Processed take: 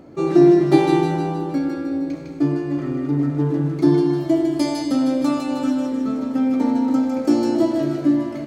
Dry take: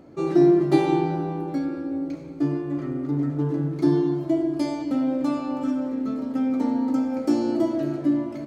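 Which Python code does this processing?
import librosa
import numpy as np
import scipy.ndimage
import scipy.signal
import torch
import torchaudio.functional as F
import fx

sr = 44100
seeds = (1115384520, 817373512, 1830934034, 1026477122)

p1 = fx.high_shelf(x, sr, hz=3800.0, db=7.0, at=(4.1, 5.72))
p2 = p1 + fx.echo_wet_highpass(p1, sr, ms=155, feedback_pct=54, hz=1700.0, wet_db=-3.0, dry=0)
y = p2 * librosa.db_to_amplitude(4.5)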